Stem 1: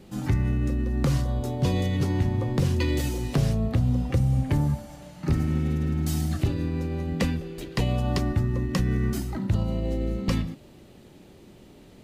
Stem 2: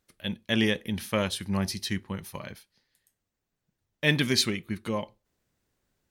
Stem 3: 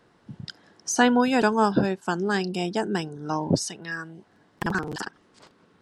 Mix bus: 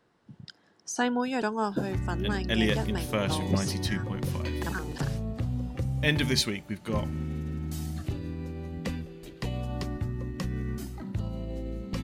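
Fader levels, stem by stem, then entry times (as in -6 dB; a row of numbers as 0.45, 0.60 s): -8.0, -2.0, -8.0 dB; 1.65, 2.00, 0.00 s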